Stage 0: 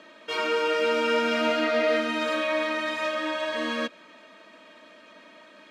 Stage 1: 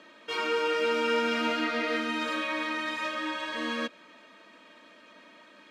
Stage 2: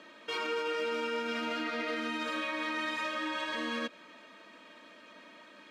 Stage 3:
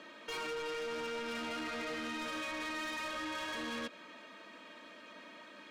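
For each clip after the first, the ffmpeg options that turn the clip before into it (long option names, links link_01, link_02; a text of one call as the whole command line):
ffmpeg -i in.wav -af "bandreject=frequency=630:width=12,volume=-2.5dB" out.wav
ffmpeg -i in.wav -af "alimiter=level_in=2dB:limit=-24dB:level=0:latency=1:release=99,volume=-2dB" out.wav
ffmpeg -i in.wav -af "asoftclip=type=tanh:threshold=-38dB,volume=1dB" out.wav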